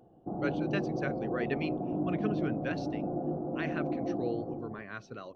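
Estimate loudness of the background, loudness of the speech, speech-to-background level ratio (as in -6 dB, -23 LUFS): -35.0 LUFS, -39.0 LUFS, -4.0 dB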